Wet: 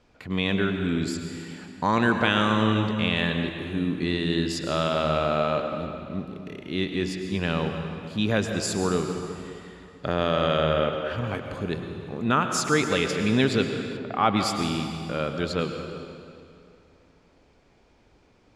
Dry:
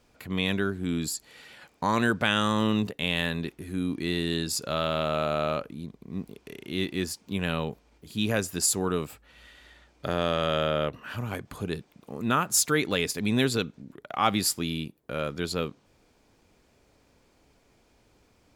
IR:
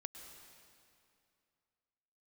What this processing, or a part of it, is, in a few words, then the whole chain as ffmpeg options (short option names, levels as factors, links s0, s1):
swimming-pool hall: -filter_complex "[1:a]atrim=start_sample=2205[s0];[0:a][s0]afir=irnorm=-1:irlink=0,lowpass=6200,highshelf=f=4400:g=-5,asettb=1/sr,asplit=3[s1][s2][s3];[s1]atrim=end=13.974[s4];[s2]atrim=start=13.97:end=14.37,asetpts=PTS-STARTPTS,afade=t=in:d=0.004:c=qsin,afade=t=out:st=0.396:d=0.004:c=qsin,aemphasis=mode=reproduction:type=75fm[s5];[s3]atrim=start=14.366[s6];[s4][s5]acrossfade=d=0.004:c1=hsin:c2=qsin[s7];[s7][s6]acrossfade=d=0.004:c1=qsin:c2=hsin,volume=2.37"